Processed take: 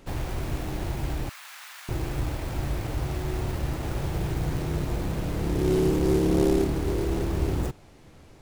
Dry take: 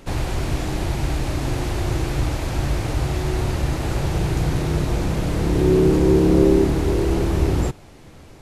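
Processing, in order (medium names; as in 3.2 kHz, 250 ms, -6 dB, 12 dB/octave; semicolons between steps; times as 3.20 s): tracing distortion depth 0.26 ms; 1.29–1.89 s: high-pass 1.2 kHz 24 dB/octave; trim -7 dB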